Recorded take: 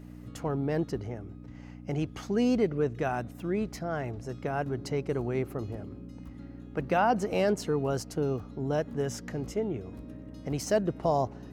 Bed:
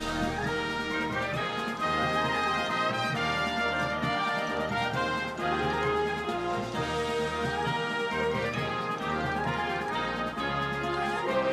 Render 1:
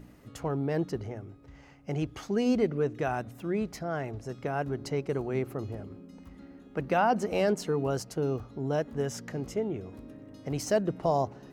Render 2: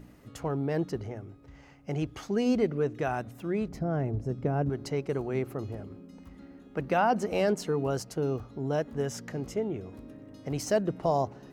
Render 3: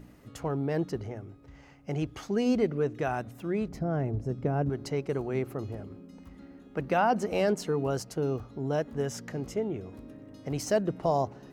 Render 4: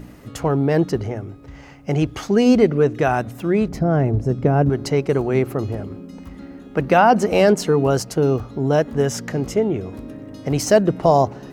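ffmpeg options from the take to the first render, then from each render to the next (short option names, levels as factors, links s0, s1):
-af "bandreject=f=60:t=h:w=4,bandreject=f=120:t=h:w=4,bandreject=f=180:t=h:w=4,bandreject=f=240:t=h:w=4,bandreject=f=300:t=h:w=4"
-filter_complex "[0:a]asettb=1/sr,asplit=3[s0][s1][s2];[s0]atrim=end=3.684[s3];[s1]atrim=start=3.68:end=4.7,asetpts=PTS-STARTPTS,afade=t=in:d=0.004:c=qsin,afade=t=out:st=1.016:d=0.004:c=qsin,tiltshelf=f=650:g=9[s4];[s2]atrim=start=4.696[s5];[s3][s4]acrossfade=d=0.004:c1=hsin:c2=qsin[s6];[s6][s5]acrossfade=d=0.004:c1=qsin:c2=hsin"
-af anull
-af "volume=3.98,alimiter=limit=0.708:level=0:latency=1"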